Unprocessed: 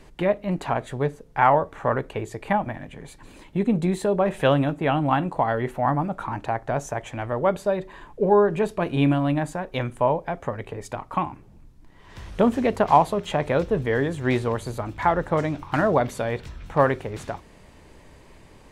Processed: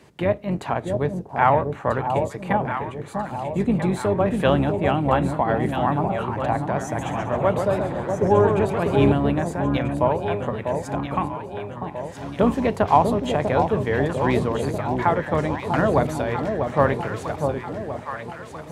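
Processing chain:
sub-octave generator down 2 octaves, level +1 dB
high-pass filter 91 Hz 24 dB per octave
delay that swaps between a low-pass and a high-pass 645 ms, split 890 Hz, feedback 70%, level −4.5 dB
0:06.85–0:09.12: feedback echo with a swinging delay time 132 ms, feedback 43%, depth 162 cents, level −6 dB

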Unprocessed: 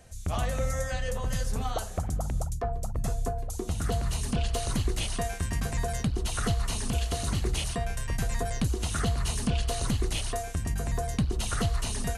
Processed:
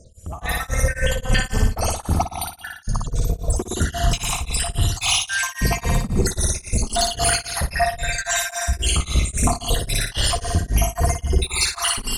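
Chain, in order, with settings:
time-frequency cells dropped at random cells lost 80%
reversed playback
downward compressor 6 to 1, threshold −37 dBFS, peak gain reduction 13.5 dB
reversed playback
soft clipping −34.5 dBFS, distortion −15 dB
flutter between parallel walls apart 9.9 metres, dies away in 1 s
automatic gain control gain up to 16 dB
tremolo along a rectified sine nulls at 3.7 Hz
level +8.5 dB

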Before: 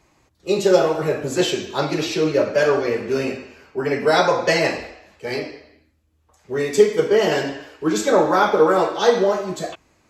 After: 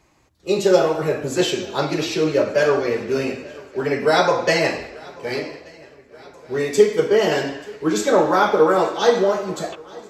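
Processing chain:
feedback echo with a long and a short gap by turns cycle 1,180 ms, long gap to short 3 to 1, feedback 50%, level −23 dB

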